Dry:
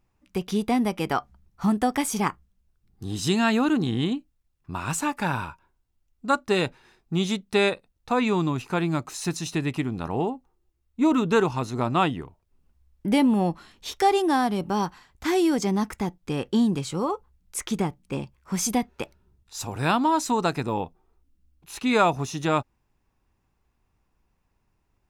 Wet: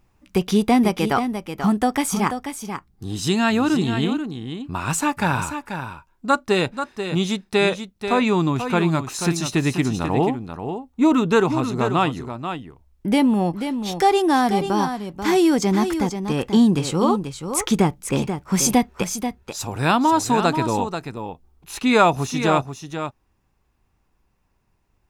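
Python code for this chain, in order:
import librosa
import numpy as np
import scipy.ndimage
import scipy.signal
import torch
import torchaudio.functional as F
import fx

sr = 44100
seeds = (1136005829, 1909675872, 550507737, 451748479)

p1 = fx.rider(x, sr, range_db=10, speed_s=2.0)
p2 = p1 + fx.echo_single(p1, sr, ms=486, db=-8.5, dry=0)
y = p2 * 10.0 ** (3.5 / 20.0)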